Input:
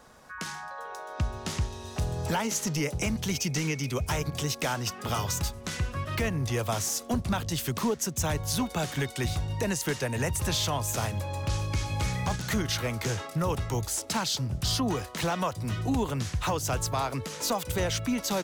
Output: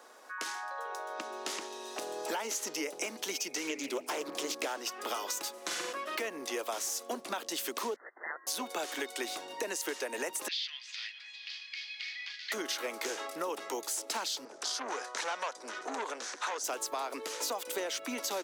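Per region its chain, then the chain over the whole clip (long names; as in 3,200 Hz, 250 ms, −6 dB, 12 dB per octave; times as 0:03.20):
0:03.69–0:04.78: low-shelf EQ 440 Hz +7 dB + mains-hum notches 50/100/150/200/250/300 Hz + highs frequency-modulated by the lows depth 0.35 ms
0:05.53–0:05.93: comb filter 5.8 ms, depth 59% + flutter between parallel walls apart 7.6 metres, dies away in 0.74 s
0:07.96–0:08.47: linear-phase brick-wall high-pass 1,200 Hz + voice inversion scrambler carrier 3,300 Hz
0:10.48–0:12.52: Chebyshev band-pass filter 1,900–4,800 Hz, order 3 + delay that swaps between a low-pass and a high-pass 204 ms, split 2,100 Hz, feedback 61%, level −10.5 dB
0:14.45–0:16.64: loudspeaker in its box 220–9,100 Hz, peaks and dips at 320 Hz −10 dB, 900 Hz +4 dB, 1,500 Hz +7 dB, 2,900 Hz −5 dB, 6,000 Hz +5 dB + saturating transformer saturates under 1,900 Hz
whole clip: Butterworth high-pass 300 Hz 36 dB per octave; downward compressor, threshold −32 dBFS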